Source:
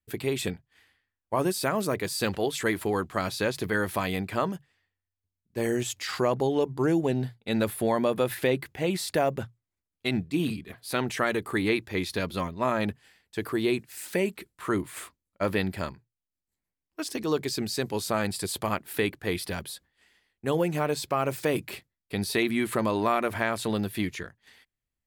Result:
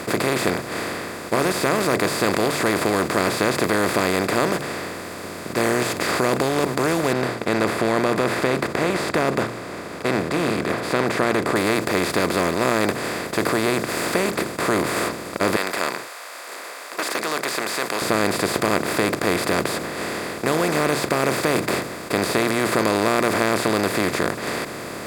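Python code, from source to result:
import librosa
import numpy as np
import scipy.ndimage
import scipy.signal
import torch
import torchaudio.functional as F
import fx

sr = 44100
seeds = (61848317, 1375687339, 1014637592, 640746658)

y = fx.lowpass(x, sr, hz=1900.0, slope=12, at=(7.13, 11.56))
y = fx.highpass(y, sr, hz=1100.0, slope=24, at=(15.56, 18.02))
y = fx.bin_compress(y, sr, power=0.2)
y = y * librosa.db_to_amplitude(-3.0)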